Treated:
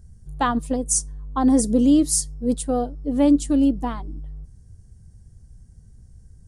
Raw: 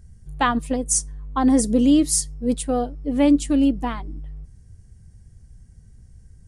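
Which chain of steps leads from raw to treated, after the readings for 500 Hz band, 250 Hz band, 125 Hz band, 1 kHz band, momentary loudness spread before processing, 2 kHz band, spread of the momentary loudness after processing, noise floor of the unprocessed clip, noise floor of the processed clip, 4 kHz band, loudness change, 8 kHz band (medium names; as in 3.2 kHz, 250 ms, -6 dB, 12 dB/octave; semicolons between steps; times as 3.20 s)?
-0.5 dB, 0.0 dB, 0.0 dB, -1.0 dB, 12 LU, no reading, 13 LU, -50 dBFS, -50 dBFS, -3.0 dB, -0.5 dB, -0.5 dB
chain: peaking EQ 2.3 kHz -9 dB 1 oct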